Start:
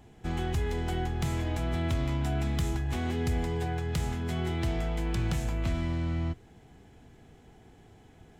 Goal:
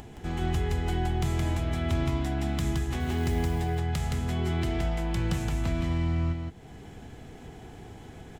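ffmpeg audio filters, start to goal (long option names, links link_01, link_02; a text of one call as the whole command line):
ffmpeg -i in.wav -filter_complex "[0:a]asettb=1/sr,asplit=3[link_01][link_02][link_03];[link_01]atrim=end=3.004[link_04];[link_02]atrim=start=3:end=3.62,asetpts=PTS-STARTPTS,afade=type=in:duration=0.004:curve=qsin,afade=type=out:start_time=0.616:duration=0.004:curve=qsin,acrusher=bits=6:mode=log:mix=0:aa=0.000001[link_05];[link_03]atrim=start=3.616[link_06];[link_04][link_05]acrossfade=duration=0.004:curve1=hsin:curve2=qsin[link_07];[link_07][link_06]acrossfade=duration=0.004:curve1=qsin:curve2=hsin,acompressor=mode=upward:threshold=-36dB:ratio=2.5,aecho=1:1:169:0.668" out.wav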